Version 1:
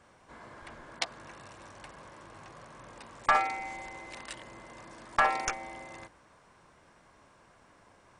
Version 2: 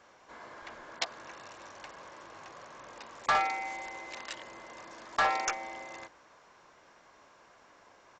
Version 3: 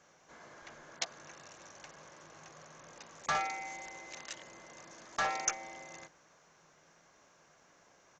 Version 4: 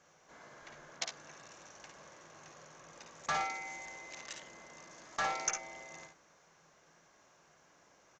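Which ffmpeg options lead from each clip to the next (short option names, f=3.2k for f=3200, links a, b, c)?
-af "bass=f=250:g=-12,treble=f=4k:g=2,aresample=16000,asoftclip=type=tanh:threshold=-22.5dB,aresample=44100,volume=2dB"
-af "equalizer=f=160:t=o:w=0.33:g=12,equalizer=f=1k:t=o:w=0.33:g=-5,equalizer=f=6.3k:t=o:w=0.33:g=11,volume=-5dB"
-af "aecho=1:1:55|69:0.447|0.282,volume=-2dB"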